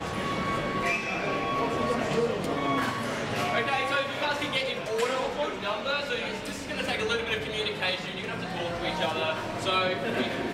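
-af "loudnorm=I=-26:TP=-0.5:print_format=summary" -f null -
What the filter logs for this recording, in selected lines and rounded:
Input Integrated:    -28.7 LUFS
Input True Peak:     -13.3 dBTP
Input LRA:             1.6 LU
Input Threshold:     -38.7 LUFS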